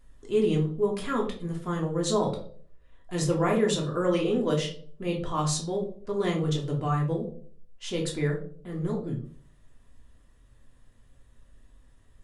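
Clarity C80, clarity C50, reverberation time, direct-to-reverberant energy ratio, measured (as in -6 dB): 13.5 dB, 9.0 dB, 0.50 s, -1.5 dB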